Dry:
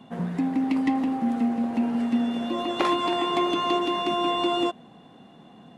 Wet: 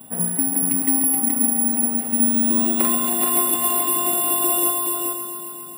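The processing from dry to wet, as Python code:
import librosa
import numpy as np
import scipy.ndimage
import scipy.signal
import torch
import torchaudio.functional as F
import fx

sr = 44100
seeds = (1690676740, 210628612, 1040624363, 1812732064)

y = fx.rider(x, sr, range_db=10, speed_s=0.5)
y = y + 10.0 ** (-4.0 / 20.0) * np.pad(y, (int(426 * sr / 1000.0), 0))[:len(y)]
y = (np.kron(scipy.signal.resample_poly(y, 1, 4), np.eye(4)[0]) * 4)[:len(y)]
y = fx.echo_crushed(y, sr, ms=135, feedback_pct=80, bits=8, wet_db=-10.5)
y = y * librosa.db_to_amplitude(-4.0)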